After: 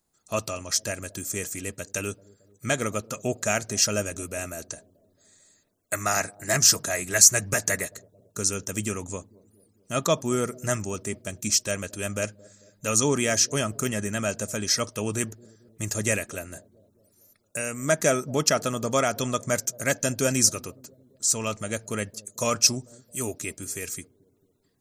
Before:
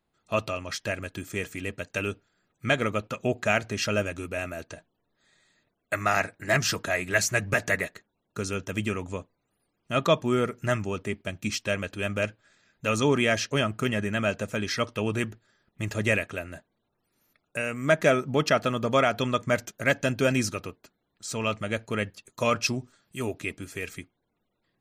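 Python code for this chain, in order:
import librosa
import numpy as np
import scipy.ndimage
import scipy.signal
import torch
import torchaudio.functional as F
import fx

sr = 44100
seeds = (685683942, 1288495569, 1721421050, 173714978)

y = fx.high_shelf_res(x, sr, hz=4500.0, db=13.5, q=1.5)
y = fx.echo_bbd(y, sr, ms=222, stages=1024, feedback_pct=57, wet_db=-22.5)
y = y * 10.0 ** (-1.0 / 20.0)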